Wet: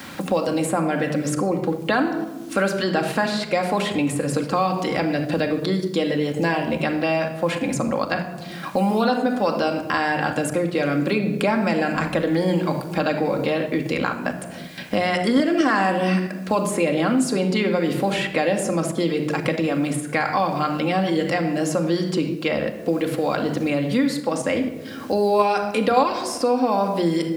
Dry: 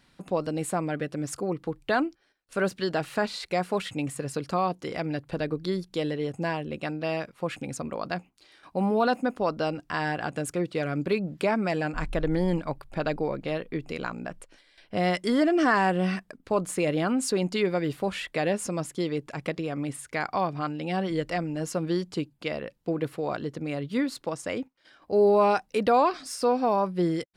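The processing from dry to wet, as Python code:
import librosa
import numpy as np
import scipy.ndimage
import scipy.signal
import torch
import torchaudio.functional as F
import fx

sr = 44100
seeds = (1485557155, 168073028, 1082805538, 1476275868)

p1 = scipy.signal.sosfilt(scipy.signal.butter(4, 70.0, 'highpass', fs=sr, output='sos'), x)
p2 = fx.low_shelf(p1, sr, hz=92.0, db=-3.5)
p3 = fx.hum_notches(p2, sr, base_hz=60, count=10)
p4 = fx.room_shoebox(p3, sr, seeds[0], volume_m3=3000.0, walls='furnished', distance_m=2.2)
p5 = fx.level_steps(p4, sr, step_db=18)
p6 = p4 + (p5 * librosa.db_to_amplitude(-1.5))
p7 = fx.quant_dither(p6, sr, seeds[1], bits=10, dither='none')
p8 = fx.band_squash(p7, sr, depth_pct=70)
y = p8 * librosa.db_to_amplitude(3.0)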